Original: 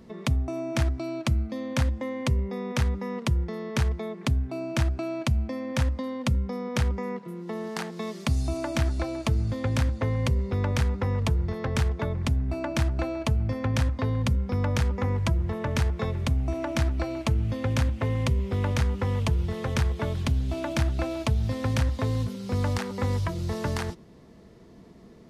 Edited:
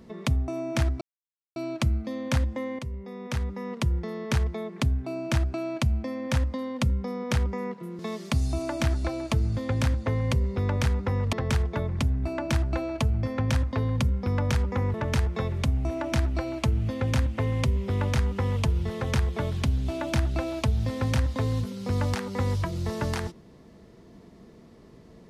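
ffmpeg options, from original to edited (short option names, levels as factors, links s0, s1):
-filter_complex "[0:a]asplit=6[s0][s1][s2][s3][s4][s5];[s0]atrim=end=1.01,asetpts=PTS-STARTPTS,afade=t=out:st=1.006:d=0.004:c=hsin,apad=pad_dur=0.55[s6];[s1]atrim=start=1.01:end=2.24,asetpts=PTS-STARTPTS,afade=t=in:d=0.004:c=hsin,afade=t=out:st=1.226:d=0.004:c=hsin:silence=0.251189[s7];[s2]atrim=start=2.24:end=7.442,asetpts=PTS-STARTPTS,afade=t=in:d=1.22:silence=0.251189[s8];[s3]atrim=start=7.938:end=11.282[s9];[s4]atrim=start=11.588:end=15.202[s10];[s5]atrim=start=15.568[s11];[s6][s7][s8]concat=n=3:v=0:a=1[s12];[s12][s9]acrossfade=d=0.004:c1=hsin:c2=hsin[s13];[s13][s10]acrossfade=d=0.004:c1=hsin:c2=hsin[s14];[s14][s11]acrossfade=d=0.004:c1=hsin:c2=hsin"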